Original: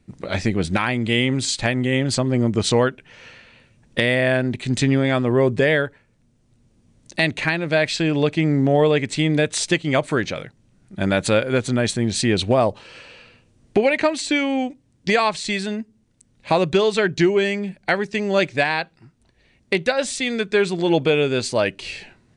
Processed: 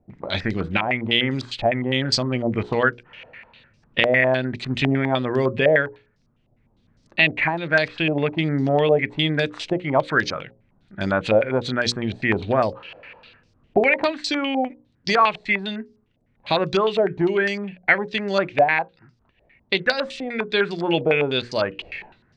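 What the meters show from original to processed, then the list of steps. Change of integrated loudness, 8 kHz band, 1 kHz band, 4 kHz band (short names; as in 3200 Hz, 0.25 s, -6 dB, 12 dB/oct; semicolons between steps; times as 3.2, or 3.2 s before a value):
-1.0 dB, -12.0 dB, +1.5 dB, 0.0 dB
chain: notches 60/120/180/240/300/360/420/480/540 Hz; stepped low-pass 9.9 Hz 690–5000 Hz; gain -3.5 dB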